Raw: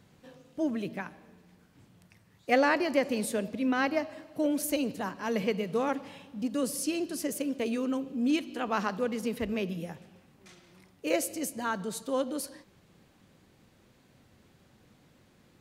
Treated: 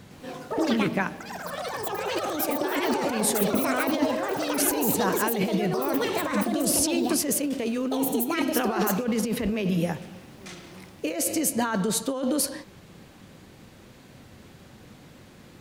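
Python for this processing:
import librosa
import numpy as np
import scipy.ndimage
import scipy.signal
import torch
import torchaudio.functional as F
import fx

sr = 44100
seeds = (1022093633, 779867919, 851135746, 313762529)

y = fx.over_compress(x, sr, threshold_db=-35.0, ratio=-1.0)
y = fx.echo_pitch(y, sr, ms=109, semitones=6, count=3, db_per_echo=-3.0)
y = y * librosa.db_to_amplitude(8.0)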